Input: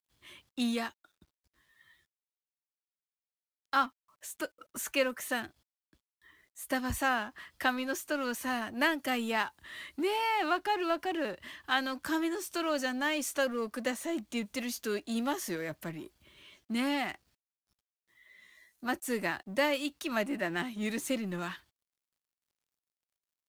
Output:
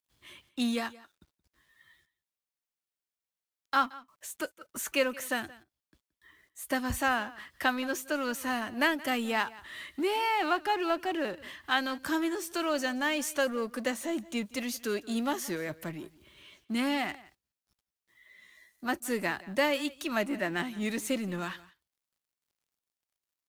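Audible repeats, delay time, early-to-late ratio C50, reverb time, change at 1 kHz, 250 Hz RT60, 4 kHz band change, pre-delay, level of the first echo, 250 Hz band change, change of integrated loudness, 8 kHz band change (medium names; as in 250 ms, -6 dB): 1, 174 ms, no reverb, no reverb, +1.5 dB, no reverb, +1.5 dB, no reverb, -20.5 dB, +1.5 dB, +1.5 dB, +1.5 dB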